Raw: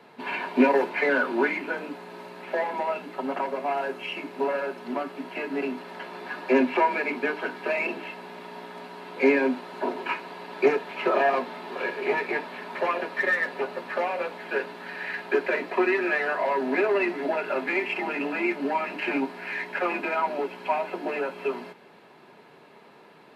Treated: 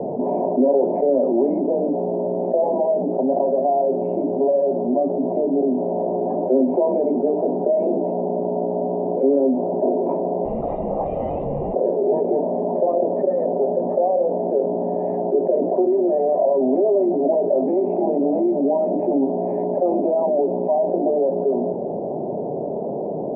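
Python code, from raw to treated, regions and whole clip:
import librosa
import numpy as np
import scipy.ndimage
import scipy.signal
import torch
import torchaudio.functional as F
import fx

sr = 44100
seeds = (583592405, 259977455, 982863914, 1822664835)

y = fx.chain(x, sr, fx.tube_stage(drive_db=18.0, bias=0.5),
    fx.freq_invert(carrier_hz=3700),
    fx.env_flatten(amount_pct=50), at=(10.45, 11.74))
y = scipy.signal.sosfilt(scipy.signal.ellip(4, 1.0, 50, 720.0, 'lowpass', fs=sr, output='sos'), y)
y = fx.peak_eq(y, sr, hz=570.0, db=6.0, octaves=0.34)
y = fx.env_flatten(y, sr, amount_pct=70)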